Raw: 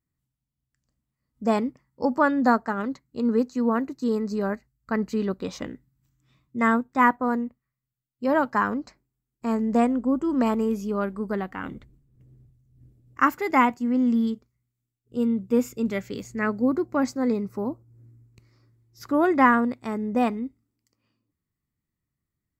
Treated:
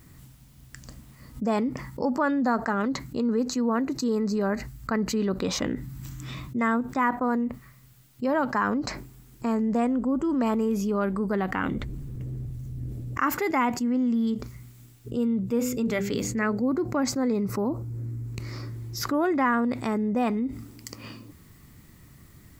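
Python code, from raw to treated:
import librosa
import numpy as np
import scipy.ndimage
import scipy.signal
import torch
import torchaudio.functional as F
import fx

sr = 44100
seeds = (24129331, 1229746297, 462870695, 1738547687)

y = fx.hum_notches(x, sr, base_hz=50, count=10, at=(15.51, 16.62))
y = fx.env_flatten(y, sr, amount_pct=70)
y = y * 10.0 ** (-7.5 / 20.0)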